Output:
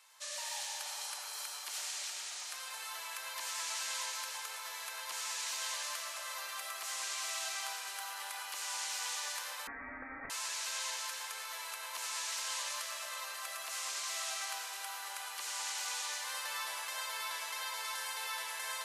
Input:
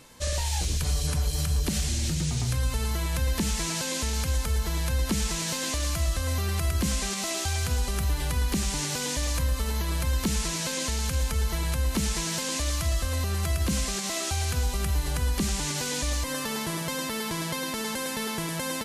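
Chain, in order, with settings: high-pass 840 Hz 24 dB/octave; reverberation RT60 4.5 s, pre-delay 50 ms, DRR -2.5 dB; 9.67–10.30 s: frequency inversion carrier 2.9 kHz; trim -9 dB

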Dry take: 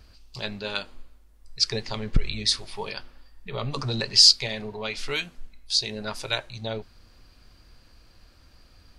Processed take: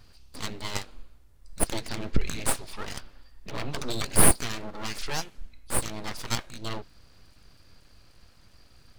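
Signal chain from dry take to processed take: full-wave rectifier

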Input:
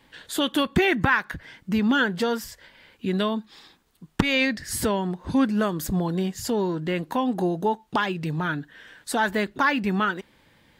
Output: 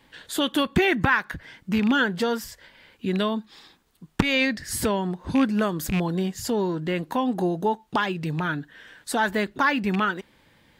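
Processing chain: rattle on loud lows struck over -23 dBFS, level -20 dBFS

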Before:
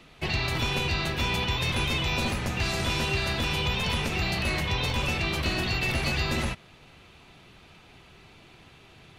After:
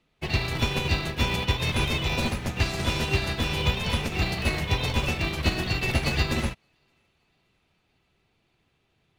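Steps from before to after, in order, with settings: thinning echo 570 ms, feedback 59%, level -23 dB; in parallel at -10.5 dB: sample-and-hold 29×; on the sum: upward expansion 2.5:1, over -38 dBFS; trim +4.5 dB

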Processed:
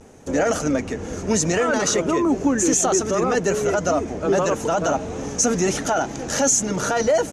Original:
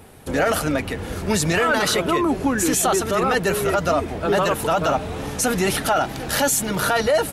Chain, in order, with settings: graphic EQ 250/500/4000 Hz +6/+5/-7 dB; vibrato 0.87 Hz 55 cents; resonant low-pass 6.4 kHz, resonance Q 6.4; trim -4.5 dB

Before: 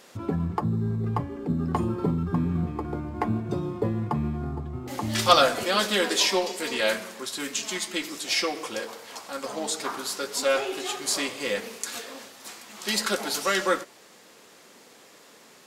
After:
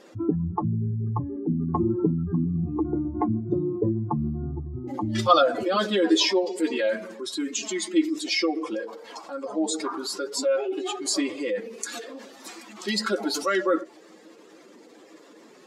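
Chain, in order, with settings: spectral contrast enhancement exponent 1.9; peaking EQ 320 Hz +13 dB 0.23 oct

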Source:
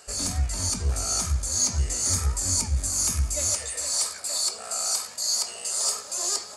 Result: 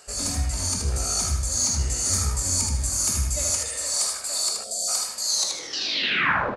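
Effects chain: tape stop on the ending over 1.30 s; feedback delay 78 ms, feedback 32%, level -4 dB; spectral selection erased 4.64–4.88 s, 720–3100 Hz; two-slope reverb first 0.59 s, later 2.3 s, from -18 dB, DRR 12.5 dB

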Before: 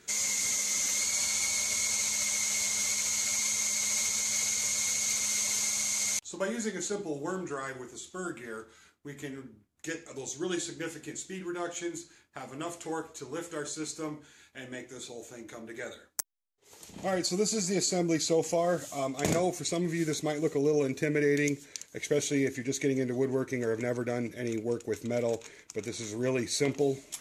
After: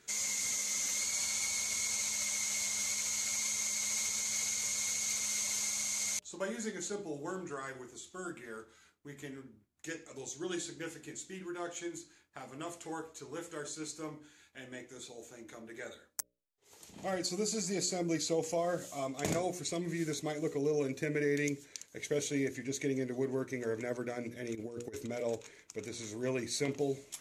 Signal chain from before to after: hum notches 60/120/180/240/300/360/420/480/540/600 Hz; 24.55–25.09 s: compressor with a negative ratio -36 dBFS, ratio -0.5; trim -5 dB

